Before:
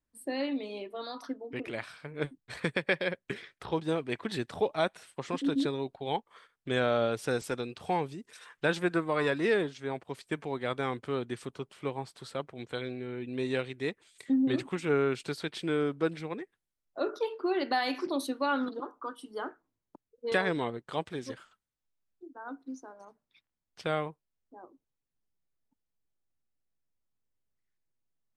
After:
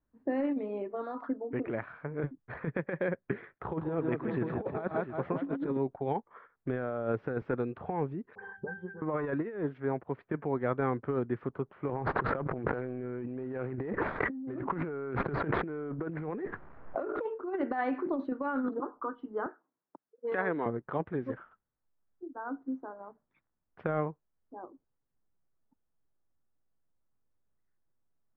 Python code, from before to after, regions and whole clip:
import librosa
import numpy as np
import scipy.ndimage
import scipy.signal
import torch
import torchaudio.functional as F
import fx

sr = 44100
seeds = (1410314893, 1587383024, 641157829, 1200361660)

y = fx.chain(x, sr, fx.highpass(hz=41.0, slope=12),
    fx.echo_multitap(ms=(129, 163, 353, 563, 696), db=(-16.5, -7.5, -14.0, -17.0, -14.5)), at=(3.55, 5.77))
y = fx.chain(y, sr, fx.octave_resonator(note='G', decay_s=0.21),
    fx.dispersion(late='highs', ms=116.0, hz=2800.0),
    fx.band_squash(depth_pct=100), at=(8.35, 9.02))
y = fx.chain(y, sr, fx.median_filter(points=15),
    fx.low_shelf(hz=440.0, db=-5.5),
    fx.env_flatten(amount_pct=100), at=(11.89, 17.26))
y = fx.chain(y, sr, fx.highpass(hz=160.0, slope=24),
    fx.low_shelf(hz=400.0, db=-9.0), at=(19.46, 20.66))
y = scipy.signal.sosfilt(scipy.signal.butter(4, 1600.0, 'lowpass', fs=sr, output='sos'), y)
y = fx.dynamic_eq(y, sr, hz=890.0, q=0.7, threshold_db=-42.0, ratio=4.0, max_db=-4)
y = fx.over_compress(y, sr, threshold_db=-33.0, ratio=-0.5)
y = y * librosa.db_to_amplitude(2.0)